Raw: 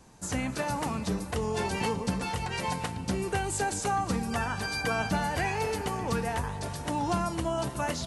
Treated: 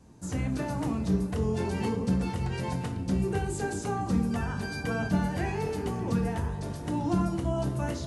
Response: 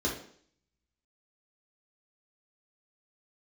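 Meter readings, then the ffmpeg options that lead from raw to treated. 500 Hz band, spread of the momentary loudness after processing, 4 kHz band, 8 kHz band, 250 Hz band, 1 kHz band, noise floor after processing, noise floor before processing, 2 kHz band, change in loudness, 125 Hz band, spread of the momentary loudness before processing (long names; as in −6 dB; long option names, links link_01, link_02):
−0.5 dB, 5 LU, −7.5 dB, −7.5 dB, +4.5 dB, −5.5 dB, −37 dBFS, −39 dBFS, −5.0 dB, +0.5 dB, +4.5 dB, 4 LU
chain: -filter_complex "[0:a]equalizer=frequency=130:width=0.36:gain=9.5,asplit=2[link_01][link_02];[1:a]atrim=start_sample=2205,adelay=20[link_03];[link_02][link_03]afir=irnorm=-1:irlink=0,volume=-12dB[link_04];[link_01][link_04]amix=inputs=2:normalize=0,volume=-8dB"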